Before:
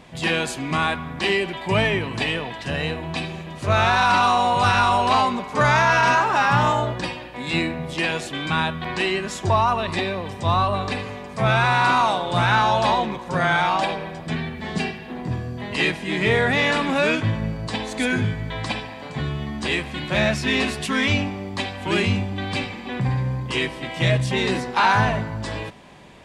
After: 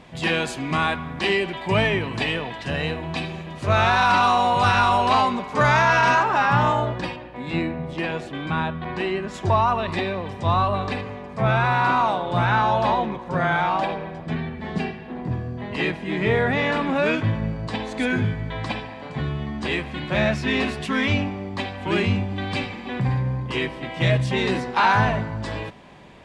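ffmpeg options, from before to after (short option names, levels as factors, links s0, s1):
-af "asetnsamples=n=441:p=0,asendcmd='6.23 lowpass f 2700;7.16 lowpass f 1200;9.34 lowpass f 2900;11.01 lowpass f 1600;17.06 lowpass f 2600;22.3 lowpass f 4700;23.18 lowpass f 2400;24.01 lowpass f 4000',lowpass=f=5500:p=1"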